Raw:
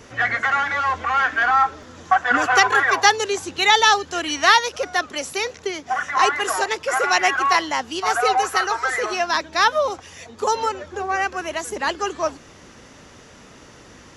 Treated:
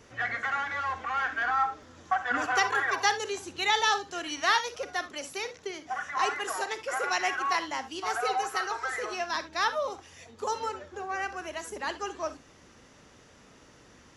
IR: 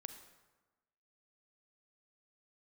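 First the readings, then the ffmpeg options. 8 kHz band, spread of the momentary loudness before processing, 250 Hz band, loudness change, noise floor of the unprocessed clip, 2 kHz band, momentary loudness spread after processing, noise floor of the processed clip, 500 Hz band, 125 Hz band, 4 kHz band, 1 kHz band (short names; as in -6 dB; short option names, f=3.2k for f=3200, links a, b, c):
-10.5 dB, 11 LU, -10.0 dB, -10.5 dB, -46 dBFS, -10.0 dB, 11 LU, -56 dBFS, -10.5 dB, n/a, -10.5 dB, -10.0 dB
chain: -filter_complex "[1:a]atrim=start_sample=2205,atrim=end_sample=3528[a];[0:a][a]afir=irnorm=-1:irlink=0,volume=-5.5dB"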